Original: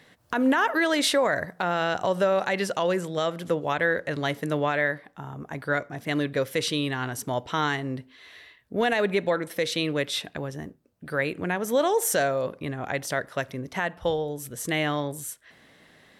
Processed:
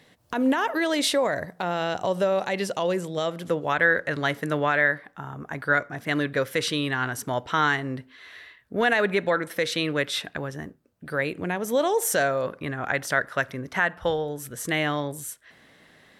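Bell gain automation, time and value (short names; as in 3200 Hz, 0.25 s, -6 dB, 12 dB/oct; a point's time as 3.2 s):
bell 1500 Hz 0.9 oct
3.2 s -4.5 dB
3.81 s +6.5 dB
10.62 s +6.5 dB
11.4 s -2 dB
11.9 s -2 dB
12.51 s +8.5 dB
14.36 s +8.5 dB
14.98 s +1.5 dB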